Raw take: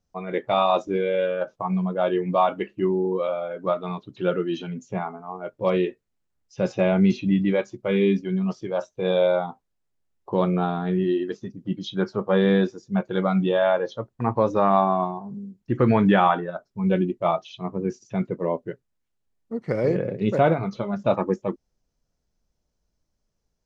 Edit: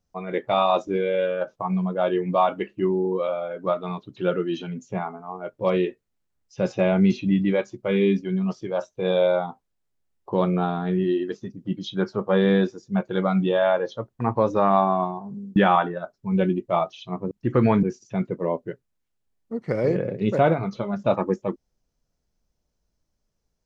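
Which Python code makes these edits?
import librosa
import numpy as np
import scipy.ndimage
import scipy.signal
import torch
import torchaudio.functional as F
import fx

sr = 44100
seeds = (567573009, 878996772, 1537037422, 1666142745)

y = fx.edit(x, sr, fx.move(start_s=15.56, length_s=0.52, to_s=17.83), tone=tone)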